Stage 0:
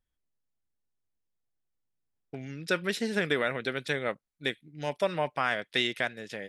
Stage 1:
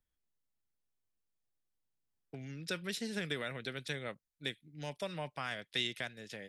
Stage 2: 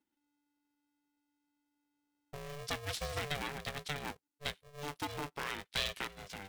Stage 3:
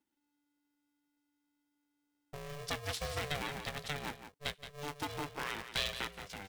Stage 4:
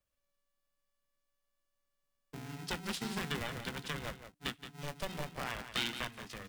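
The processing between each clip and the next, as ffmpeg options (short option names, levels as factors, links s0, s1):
-filter_complex "[0:a]acrossover=split=180|3000[s0][s1][s2];[s1]acompressor=threshold=0.00251:ratio=1.5[s3];[s0][s3][s2]amix=inputs=3:normalize=0,volume=0.708"
-af "aeval=exprs='val(0)*sgn(sin(2*PI*290*n/s))':c=same"
-af "aecho=1:1:173:0.299"
-af "afreqshift=-300"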